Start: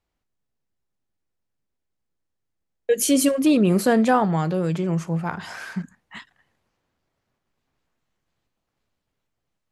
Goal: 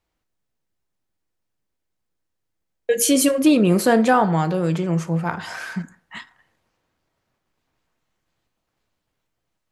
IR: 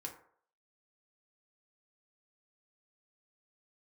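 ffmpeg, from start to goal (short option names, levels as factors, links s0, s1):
-filter_complex "[0:a]asplit=2[s0][s1];[1:a]atrim=start_sample=2205,lowshelf=f=260:g=-11.5[s2];[s1][s2]afir=irnorm=-1:irlink=0,volume=0.841[s3];[s0][s3]amix=inputs=2:normalize=0"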